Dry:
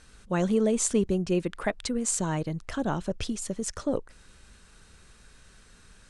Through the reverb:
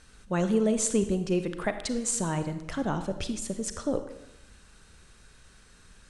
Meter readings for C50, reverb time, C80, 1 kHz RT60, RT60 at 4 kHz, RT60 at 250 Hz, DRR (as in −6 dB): 10.0 dB, 0.90 s, 12.5 dB, 0.90 s, 0.75 s, 1.0 s, 9.0 dB